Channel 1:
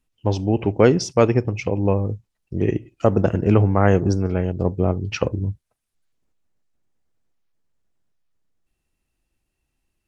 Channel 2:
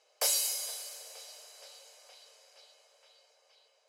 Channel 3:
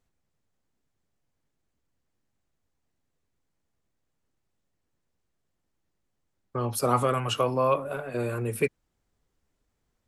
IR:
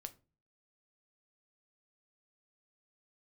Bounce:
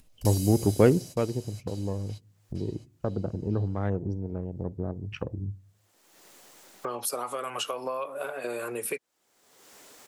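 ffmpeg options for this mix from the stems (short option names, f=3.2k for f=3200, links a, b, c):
-filter_complex "[0:a]agate=range=-12dB:threshold=-39dB:ratio=16:detection=peak,afwtdn=0.0355,volume=-3dB,afade=t=out:st=0.74:d=0.55:silence=0.298538,asplit=3[a][b][c];[b]volume=-7dB[d];[1:a]acompressor=threshold=-40dB:ratio=2.5,volume=2.5dB[e];[2:a]highpass=520,acompressor=threshold=-29dB:ratio=6,adelay=300,volume=3dB[f];[c]apad=whole_len=171201[g];[e][g]sidechaingate=range=-51dB:threshold=-41dB:ratio=16:detection=peak[h];[3:a]atrim=start_sample=2205[i];[d][i]afir=irnorm=-1:irlink=0[j];[a][h][f][j]amix=inputs=4:normalize=0,equalizer=f=1.3k:w=0.36:g=-5.5,acompressor=mode=upward:threshold=-27dB:ratio=2.5"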